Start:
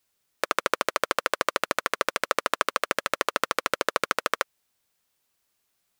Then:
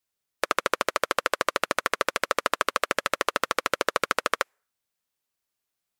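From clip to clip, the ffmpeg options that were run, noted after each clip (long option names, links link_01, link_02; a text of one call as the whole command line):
ffmpeg -i in.wav -af "afftdn=noise_reduction=20:noise_floor=-50,alimiter=level_in=12.5dB:limit=-1dB:release=50:level=0:latency=1,volume=-1.5dB" out.wav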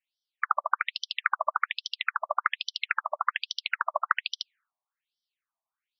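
ffmpeg -i in.wav -af "afftfilt=real='re*between(b*sr/1024,820*pow(4300/820,0.5+0.5*sin(2*PI*1.2*pts/sr))/1.41,820*pow(4300/820,0.5+0.5*sin(2*PI*1.2*pts/sr))*1.41)':imag='im*between(b*sr/1024,820*pow(4300/820,0.5+0.5*sin(2*PI*1.2*pts/sr))/1.41,820*pow(4300/820,0.5+0.5*sin(2*PI*1.2*pts/sr))*1.41)':win_size=1024:overlap=0.75,volume=3dB" out.wav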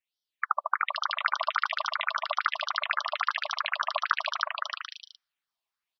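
ffmpeg -i in.wav -af "aecho=1:1:320|512|627.2|696.3|737.8:0.631|0.398|0.251|0.158|0.1,volume=-1.5dB" out.wav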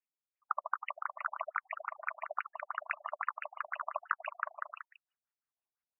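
ffmpeg -i in.wav -af "afftfilt=real='re*lt(b*sr/1024,730*pow(3000/730,0.5+0.5*sin(2*PI*5.9*pts/sr)))':imag='im*lt(b*sr/1024,730*pow(3000/730,0.5+0.5*sin(2*PI*5.9*pts/sr)))':win_size=1024:overlap=0.75,volume=-7dB" out.wav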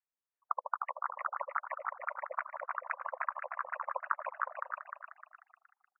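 ffmpeg -i in.wav -filter_complex "[0:a]highpass=frequency=510:width_type=q:width=0.5412,highpass=frequency=510:width_type=q:width=1.307,lowpass=frequency=2100:width_type=q:width=0.5176,lowpass=frequency=2100:width_type=q:width=0.7071,lowpass=frequency=2100:width_type=q:width=1.932,afreqshift=-77,asplit=5[link_01][link_02][link_03][link_04][link_05];[link_02]adelay=305,afreqshift=53,volume=-5dB[link_06];[link_03]adelay=610,afreqshift=106,volume=-13.9dB[link_07];[link_04]adelay=915,afreqshift=159,volume=-22.7dB[link_08];[link_05]adelay=1220,afreqshift=212,volume=-31.6dB[link_09];[link_01][link_06][link_07][link_08][link_09]amix=inputs=5:normalize=0" out.wav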